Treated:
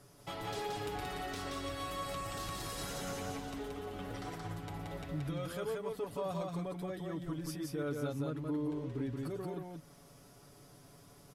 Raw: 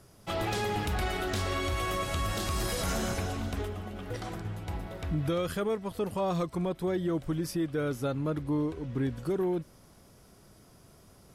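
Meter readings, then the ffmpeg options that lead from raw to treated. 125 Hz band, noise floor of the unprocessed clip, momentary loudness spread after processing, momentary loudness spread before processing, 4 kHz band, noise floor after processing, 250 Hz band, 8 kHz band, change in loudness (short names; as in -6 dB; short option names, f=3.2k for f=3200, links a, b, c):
-8.0 dB, -57 dBFS, 20 LU, 7 LU, -7.0 dB, -59 dBFS, -7.5 dB, -7.0 dB, -7.5 dB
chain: -af "alimiter=level_in=6dB:limit=-24dB:level=0:latency=1:release=318,volume=-6dB,lowshelf=f=100:g=-5.5,aecho=1:1:7:0.67,aecho=1:1:177:0.708,volume=-3.5dB"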